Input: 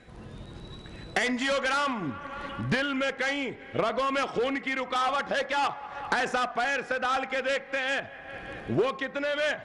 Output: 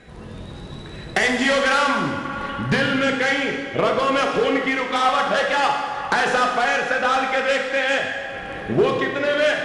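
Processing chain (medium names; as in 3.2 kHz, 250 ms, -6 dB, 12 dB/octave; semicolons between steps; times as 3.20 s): plate-style reverb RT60 1.7 s, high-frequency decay 0.85×, DRR 1 dB; trim +6 dB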